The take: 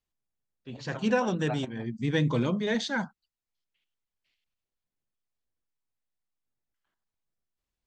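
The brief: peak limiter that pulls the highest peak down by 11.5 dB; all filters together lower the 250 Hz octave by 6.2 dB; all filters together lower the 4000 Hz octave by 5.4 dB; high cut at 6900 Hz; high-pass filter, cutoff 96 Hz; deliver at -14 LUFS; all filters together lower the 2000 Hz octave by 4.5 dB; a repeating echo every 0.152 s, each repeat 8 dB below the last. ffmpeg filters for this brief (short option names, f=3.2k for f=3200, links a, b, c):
-af "highpass=96,lowpass=6.9k,equalizer=f=250:t=o:g=-8,equalizer=f=2k:t=o:g=-5,equalizer=f=4k:t=o:g=-4.5,alimiter=level_in=4dB:limit=-24dB:level=0:latency=1,volume=-4dB,aecho=1:1:152|304|456|608|760:0.398|0.159|0.0637|0.0255|0.0102,volume=23dB"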